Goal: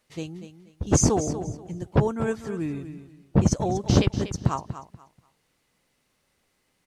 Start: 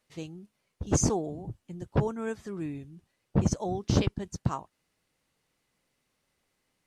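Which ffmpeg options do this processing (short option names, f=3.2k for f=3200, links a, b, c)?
-af "aecho=1:1:241|482|723:0.266|0.0612|0.0141,volume=5.5dB"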